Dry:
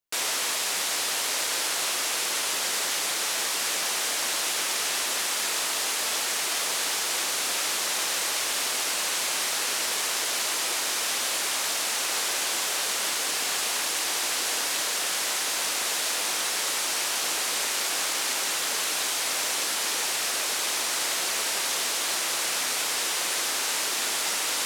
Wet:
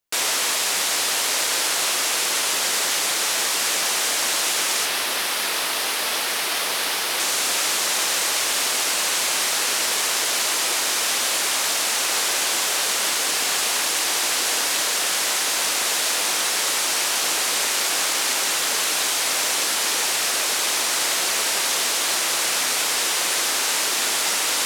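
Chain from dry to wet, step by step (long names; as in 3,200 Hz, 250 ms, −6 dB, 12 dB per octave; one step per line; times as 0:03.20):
0:04.85–0:07.20: parametric band 7,200 Hz −7.5 dB 0.63 octaves
level +5.5 dB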